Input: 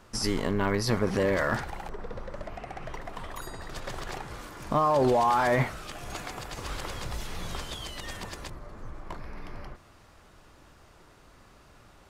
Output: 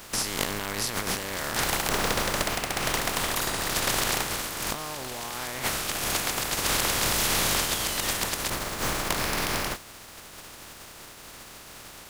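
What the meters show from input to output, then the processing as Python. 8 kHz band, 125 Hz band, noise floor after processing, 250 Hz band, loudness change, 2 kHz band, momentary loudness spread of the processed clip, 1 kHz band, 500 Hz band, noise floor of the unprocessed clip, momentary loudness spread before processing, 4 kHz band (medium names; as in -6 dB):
+16.0 dB, -2.0 dB, -46 dBFS, -2.0 dB, +3.5 dB, +6.5 dB, 20 LU, -0.5 dB, -3.5 dB, -56 dBFS, 20 LU, +12.0 dB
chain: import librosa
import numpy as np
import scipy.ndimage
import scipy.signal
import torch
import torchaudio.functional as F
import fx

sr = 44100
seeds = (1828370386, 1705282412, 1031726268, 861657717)

y = fx.spec_flatten(x, sr, power=0.36)
y = fx.over_compress(y, sr, threshold_db=-34.0, ratio=-1.0)
y = y * 10.0 ** (6.0 / 20.0)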